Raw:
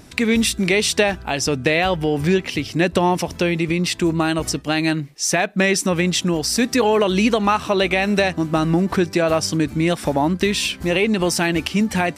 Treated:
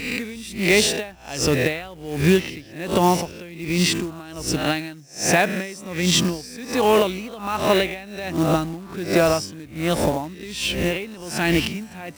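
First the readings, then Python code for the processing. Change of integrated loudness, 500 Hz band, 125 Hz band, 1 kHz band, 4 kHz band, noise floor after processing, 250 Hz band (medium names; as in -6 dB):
-3.0 dB, -2.5 dB, -3.0 dB, -3.0 dB, -2.0 dB, -41 dBFS, -4.5 dB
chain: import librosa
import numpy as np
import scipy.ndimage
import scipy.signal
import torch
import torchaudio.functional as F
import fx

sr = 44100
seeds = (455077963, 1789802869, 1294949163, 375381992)

y = fx.spec_swells(x, sr, rise_s=0.61)
y = fx.low_shelf(y, sr, hz=150.0, db=4.0)
y = fx.quant_float(y, sr, bits=2)
y = y * 10.0 ** (-21 * (0.5 - 0.5 * np.cos(2.0 * np.pi * 1.3 * np.arange(len(y)) / sr)) / 20.0)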